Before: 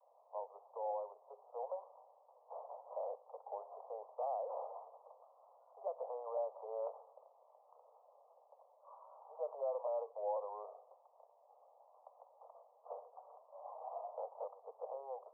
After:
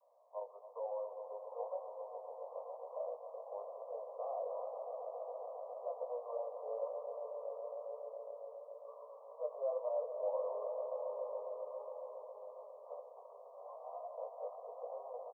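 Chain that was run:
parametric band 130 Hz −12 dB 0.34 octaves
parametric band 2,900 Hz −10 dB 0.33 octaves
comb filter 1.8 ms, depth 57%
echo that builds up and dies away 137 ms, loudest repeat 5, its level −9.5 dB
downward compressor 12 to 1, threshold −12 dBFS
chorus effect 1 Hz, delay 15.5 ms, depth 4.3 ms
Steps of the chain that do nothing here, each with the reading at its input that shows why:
parametric band 130 Hz: nothing at its input below 380 Hz
parametric band 2,900 Hz: nothing at its input above 1,200 Hz
downward compressor, threshold −12 dBFS: peak of its input −24.5 dBFS

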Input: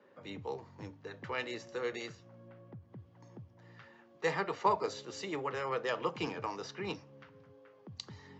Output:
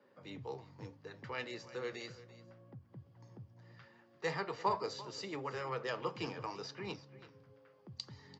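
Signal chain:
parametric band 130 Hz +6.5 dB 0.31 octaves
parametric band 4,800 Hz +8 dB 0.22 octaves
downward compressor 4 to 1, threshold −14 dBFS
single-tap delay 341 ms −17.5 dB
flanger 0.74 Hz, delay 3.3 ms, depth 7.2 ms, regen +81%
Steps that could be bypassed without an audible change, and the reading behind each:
downward compressor, threshold −14 dBFS: peak of its input −16.5 dBFS

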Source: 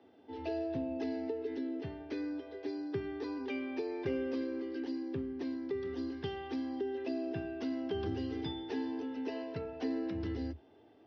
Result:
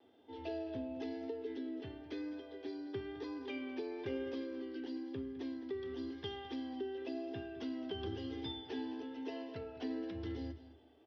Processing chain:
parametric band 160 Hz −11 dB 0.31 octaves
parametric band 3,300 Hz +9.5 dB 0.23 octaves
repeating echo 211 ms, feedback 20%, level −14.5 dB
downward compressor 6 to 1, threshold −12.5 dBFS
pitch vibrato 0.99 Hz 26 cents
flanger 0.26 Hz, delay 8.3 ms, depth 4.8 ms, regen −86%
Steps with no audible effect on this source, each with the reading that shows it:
downward compressor, threshold −12.5 dBFS: peak of its input −23.5 dBFS

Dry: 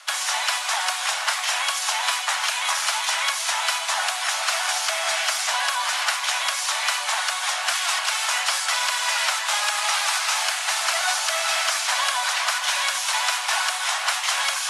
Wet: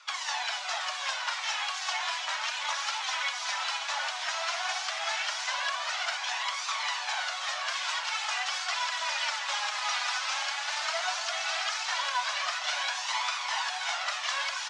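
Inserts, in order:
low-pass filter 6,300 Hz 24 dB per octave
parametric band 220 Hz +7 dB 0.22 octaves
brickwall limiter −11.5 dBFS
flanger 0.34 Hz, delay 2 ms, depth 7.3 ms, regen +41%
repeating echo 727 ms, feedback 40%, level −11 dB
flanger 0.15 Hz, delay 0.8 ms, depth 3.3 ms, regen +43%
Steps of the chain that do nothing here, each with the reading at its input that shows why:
parametric band 220 Hz: nothing at its input below 480 Hz

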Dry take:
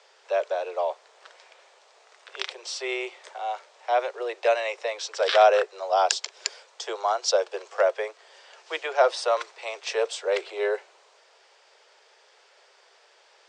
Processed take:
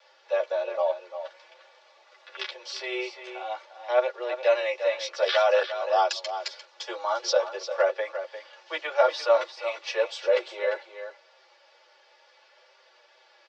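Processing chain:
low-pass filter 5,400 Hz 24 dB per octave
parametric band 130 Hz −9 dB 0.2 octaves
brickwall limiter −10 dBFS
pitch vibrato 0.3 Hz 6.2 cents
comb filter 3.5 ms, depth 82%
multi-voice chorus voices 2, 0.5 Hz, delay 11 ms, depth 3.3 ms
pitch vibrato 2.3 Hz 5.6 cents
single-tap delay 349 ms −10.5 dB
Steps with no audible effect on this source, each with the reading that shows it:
parametric band 130 Hz: nothing at its input below 320 Hz

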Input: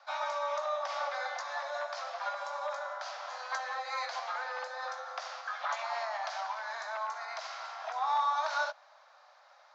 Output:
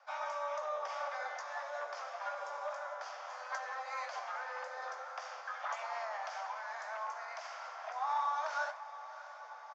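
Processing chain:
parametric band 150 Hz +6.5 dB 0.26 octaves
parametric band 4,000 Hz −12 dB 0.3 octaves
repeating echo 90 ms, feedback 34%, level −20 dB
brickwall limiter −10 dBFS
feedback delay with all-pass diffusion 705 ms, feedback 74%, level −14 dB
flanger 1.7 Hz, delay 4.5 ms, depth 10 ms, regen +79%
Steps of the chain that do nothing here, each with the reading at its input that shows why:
parametric band 150 Hz: nothing at its input below 450 Hz
brickwall limiter −10 dBFS: peak of its input −20.0 dBFS

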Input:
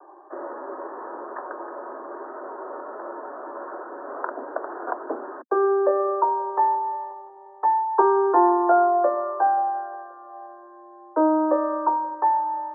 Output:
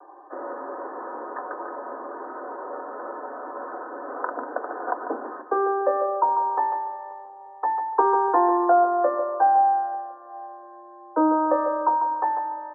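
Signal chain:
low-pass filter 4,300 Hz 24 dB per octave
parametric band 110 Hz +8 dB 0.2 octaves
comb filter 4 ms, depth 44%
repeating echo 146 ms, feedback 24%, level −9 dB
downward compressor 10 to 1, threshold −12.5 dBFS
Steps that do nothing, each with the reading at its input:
low-pass filter 4,300 Hz: nothing at its input above 1,600 Hz
parametric band 110 Hz: nothing at its input below 270 Hz

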